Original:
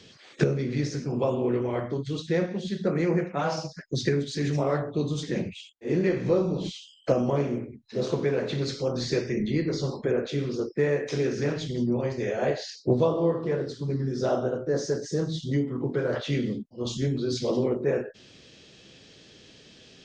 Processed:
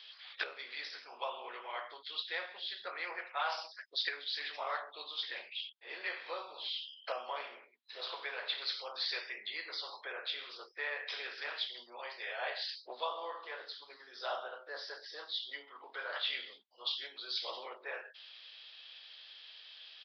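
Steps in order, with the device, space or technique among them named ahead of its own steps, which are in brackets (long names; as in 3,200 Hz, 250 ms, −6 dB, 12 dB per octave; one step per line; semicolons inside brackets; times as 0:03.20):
musical greeting card (downsampling to 11,025 Hz; high-pass filter 850 Hz 24 dB per octave; parametric band 3,400 Hz +7 dB 0.51 octaves)
level −2.5 dB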